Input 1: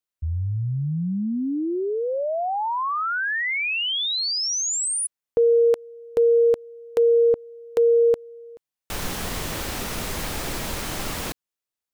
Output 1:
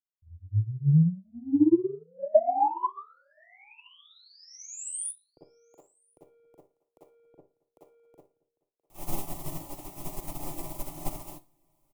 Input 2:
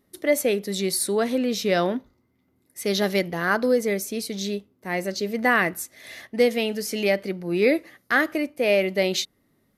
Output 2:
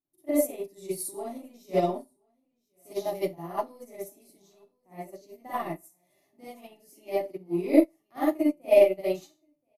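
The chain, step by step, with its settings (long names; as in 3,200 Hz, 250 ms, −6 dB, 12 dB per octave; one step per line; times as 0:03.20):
parametric band 4,000 Hz −14 dB 1.8 octaves
in parallel at −11 dB: soft clipping −18 dBFS
on the sum: phaser with its sweep stopped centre 310 Hz, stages 8
on a send: single-tap delay 1,026 ms −21.5 dB
on the sum: four-comb reverb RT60 0.31 s, DRR −8 dB
expander for the loud parts 2.5 to 1, over −28 dBFS
level −2.5 dB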